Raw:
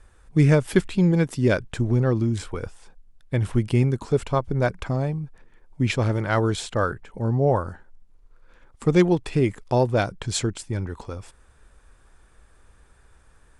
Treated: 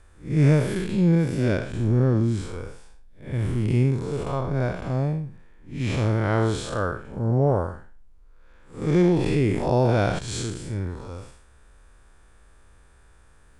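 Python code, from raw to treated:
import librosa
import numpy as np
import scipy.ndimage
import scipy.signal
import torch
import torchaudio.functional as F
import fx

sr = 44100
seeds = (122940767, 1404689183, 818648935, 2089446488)

y = fx.spec_blur(x, sr, span_ms=176.0)
y = fx.env_flatten(y, sr, amount_pct=50, at=(9.05, 10.19))
y = F.gain(torch.from_numpy(y), 2.0).numpy()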